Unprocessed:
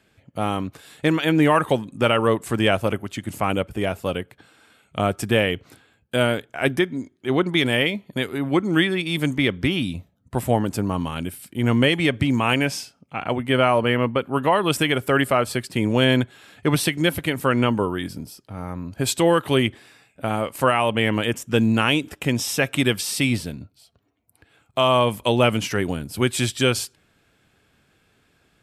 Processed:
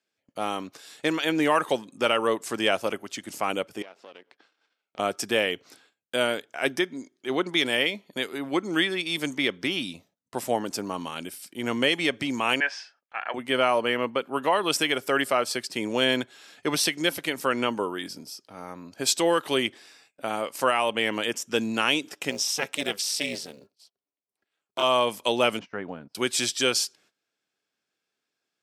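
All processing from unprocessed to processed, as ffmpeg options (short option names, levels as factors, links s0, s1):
-filter_complex "[0:a]asettb=1/sr,asplit=3[s0][s1][s2];[s0]atrim=end=3.824[s3];[s1]atrim=start=3.82:end=4.99,asetpts=PTS-STARTPTS,afade=t=in:d=0.004:c=qsin,afade=t=out:st=1.166:d=0.004:c=qsin,aeval=exprs='if(lt(val(0),0),0.251*val(0),val(0))':c=same,highpass=250,lowpass=3800,acompressor=threshold=0.00794:ratio=3:attack=3.2:release=140:knee=1:detection=peak[s4];[s2]atrim=start=4.986[s5];[s3][s4]acrossfade=d=0.004:c1=hsin:c2=qsin[s6];[s6][s5]acrossfade=d=0.004:c1=qsin:c2=hsin,asettb=1/sr,asplit=3[s7][s8][s9];[s7]atrim=end=12.604[s10];[s8]atrim=start=12.6:end=13.34,asetpts=PTS-STARTPTS,afade=t=in:d=0.004:c=qsin,afade=t=out:st=0.736:d=0.004:c=qsin,highpass=740,lowpass=2600,equalizer=f=1700:w=4.9:g=13.5[s11];[s9]atrim=start=13.336[s12];[s10][s11]acrossfade=d=0.004:c1=hsin:c2=qsin[s13];[s13][s12]acrossfade=d=0.004:c1=qsin:c2=hsin,asettb=1/sr,asplit=3[s14][s15][s16];[s14]atrim=end=22.304[s17];[s15]atrim=start=22.3:end=24.83,asetpts=PTS-STARTPTS,afade=t=in:d=0.004:c=qsin,afade=t=out:st=2.526:d=0.004:c=qsin,tremolo=f=300:d=0.947,acrusher=bits=9:mode=log:mix=0:aa=0.000001[s18];[s16]atrim=start=24.826[s19];[s17][s18]acrossfade=d=0.004:c1=hsin:c2=qsin[s20];[s20][s19]acrossfade=d=0.004:c1=qsin:c2=hsin,asettb=1/sr,asplit=3[s21][s22][s23];[s21]atrim=end=25.594[s24];[s22]atrim=start=25.59:end=26.15,asetpts=PTS-STARTPTS,afade=t=in:d=0.004:c=qsin,afade=t=out:st=0.556:d=0.004:c=qsin,lowpass=1300,equalizer=f=360:t=o:w=0.63:g=-8,agate=range=0.112:threshold=0.0158:ratio=16:release=100:detection=peak[s25];[s23]atrim=start=26.146[s26];[s24][s25]acrossfade=d=0.004:c1=hsin:c2=qsin[s27];[s27][s26]acrossfade=d=0.004:c1=qsin:c2=hsin,highpass=300,agate=range=0.141:threshold=0.00141:ratio=16:detection=peak,equalizer=f=5500:t=o:w=0.86:g=10.5,volume=0.631"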